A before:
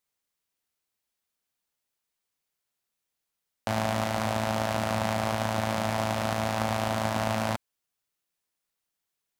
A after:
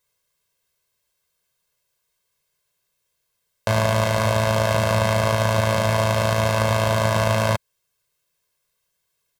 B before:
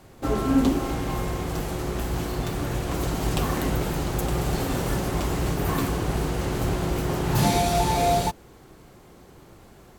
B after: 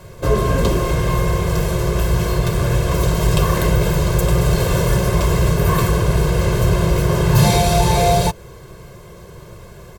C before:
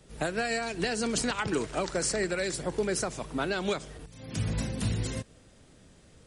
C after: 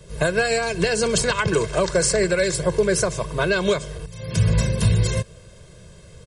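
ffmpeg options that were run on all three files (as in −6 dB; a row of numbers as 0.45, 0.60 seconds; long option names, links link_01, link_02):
-filter_complex "[0:a]equalizer=frequency=160:width=0.95:gain=5,aecho=1:1:1.9:0.92,asplit=2[link_01][link_02];[link_02]alimiter=limit=-16.5dB:level=0:latency=1:release=162,volume=-1.5dB[link_03];[link_01][link_03]amix=inputs=2:normalize=0,volume=1.5dB"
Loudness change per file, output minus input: +8.5, +8.5, +10.0 LU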